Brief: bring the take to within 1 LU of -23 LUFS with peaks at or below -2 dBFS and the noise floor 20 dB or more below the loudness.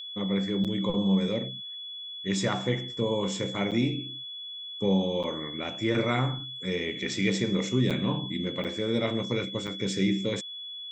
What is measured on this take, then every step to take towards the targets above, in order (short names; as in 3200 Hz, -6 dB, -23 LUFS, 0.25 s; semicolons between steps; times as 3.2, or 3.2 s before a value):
dropouts 6; longest dropout 7.1 ms; steady tone 3400 Hz; tone level -37 dBFS; loudness -29.0 LUFS; peak -12.0 dBFS; loudness target -23.0 LUFS
-> interpolate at 0.64/3.71/5.23/7.9/8.64/9.67, 7.1 ms; notch 3400 Hz, Q 30; gain +6 dB